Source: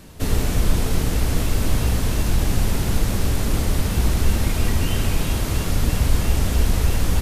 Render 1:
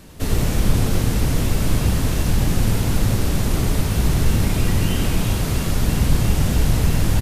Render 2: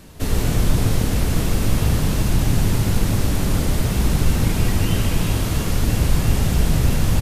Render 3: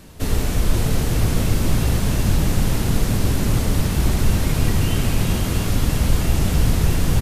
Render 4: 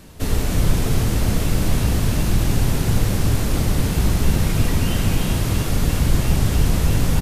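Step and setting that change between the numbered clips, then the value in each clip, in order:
frequency-shifting echo, time: 91 ms, 148 ms, 522 ms, 299 ms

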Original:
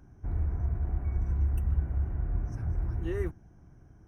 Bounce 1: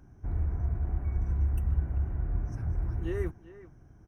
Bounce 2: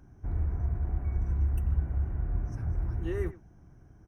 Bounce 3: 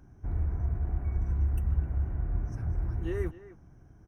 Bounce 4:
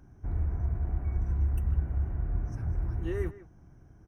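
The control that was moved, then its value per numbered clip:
speakerphone echo, time: 390 ms, 90 ms, 260 ms, 160 ms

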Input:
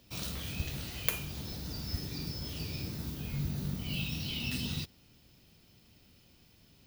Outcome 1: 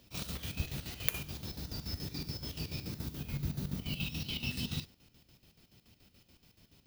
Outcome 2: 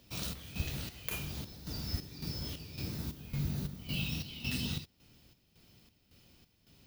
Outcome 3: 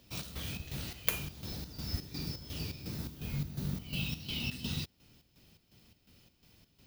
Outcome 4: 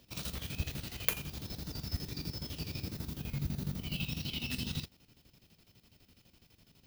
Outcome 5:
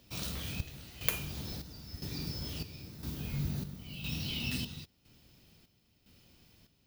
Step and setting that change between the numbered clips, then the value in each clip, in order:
square tremolo, rate: 7 Hz, 1.8 Hz, 2.8 Hz, 12 Hz, 0.99 Hz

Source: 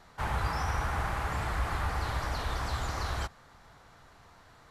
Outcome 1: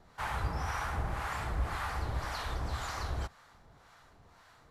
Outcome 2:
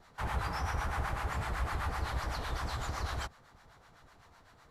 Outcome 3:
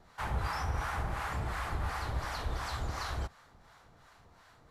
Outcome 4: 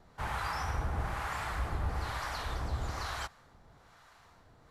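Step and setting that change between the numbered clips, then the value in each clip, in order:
harmonic tremolo, rate: 1.9 Hz, 7.9 Hz, 2.8 Hz, 1.1 Hz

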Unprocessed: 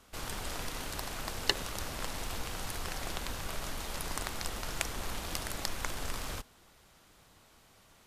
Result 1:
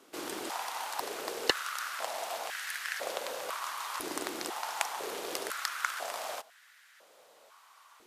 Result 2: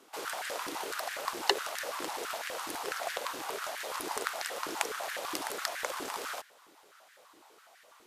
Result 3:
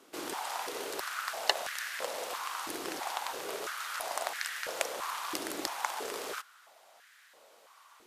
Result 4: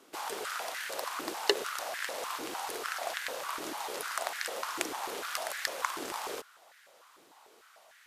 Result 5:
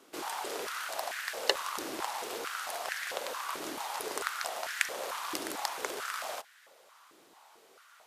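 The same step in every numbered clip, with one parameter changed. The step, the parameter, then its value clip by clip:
step-sequenced high-pass, rate: 2 Hz, 12 Hz, 3 Hz, 6.7 Hz, 4.5 Hz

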